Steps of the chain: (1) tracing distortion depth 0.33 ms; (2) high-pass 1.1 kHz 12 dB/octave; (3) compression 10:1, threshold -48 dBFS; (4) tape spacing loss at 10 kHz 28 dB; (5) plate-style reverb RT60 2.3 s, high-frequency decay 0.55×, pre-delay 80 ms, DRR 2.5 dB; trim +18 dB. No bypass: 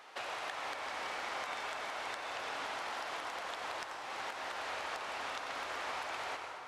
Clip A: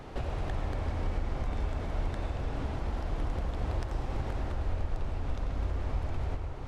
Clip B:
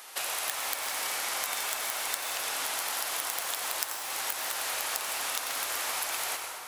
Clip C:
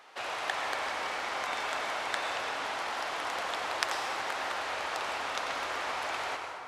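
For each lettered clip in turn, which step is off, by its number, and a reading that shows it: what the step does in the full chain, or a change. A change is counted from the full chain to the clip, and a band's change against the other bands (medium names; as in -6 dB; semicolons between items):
2, 125 Hz band +39.0 dB; 4, 8 kHz band +18.5 dB; 3, mean gain reduction 6.5 dB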